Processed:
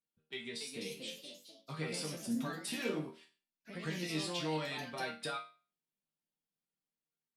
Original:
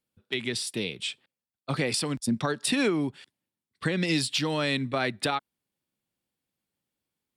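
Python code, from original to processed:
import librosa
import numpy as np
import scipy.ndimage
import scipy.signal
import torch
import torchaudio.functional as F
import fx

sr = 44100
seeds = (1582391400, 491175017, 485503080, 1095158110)

y = fx.resonator_bank(x, sr, root=51, chord='major', decay_s=0.35)
y = fx.echo_pitch(y, sr, ms=316, semitones=2, count=3, db_per_echo=-6.0)
y = F.gain(torch.from_numpy(y), 3.5).numpy()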